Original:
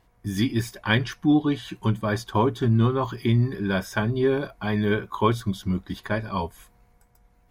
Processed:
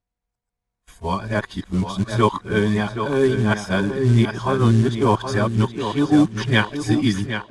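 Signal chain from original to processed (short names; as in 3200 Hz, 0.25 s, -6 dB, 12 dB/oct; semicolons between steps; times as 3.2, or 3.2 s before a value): whole clip reversed; companded quantiser 6-bit; steep low-pass 10000 Hz 36 dB/oct; gate -50 dBFS, range -28 dB; tape echo 0.771 s, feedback 33%, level -7 dB, low-pass 4800 Hz; gain +4 dB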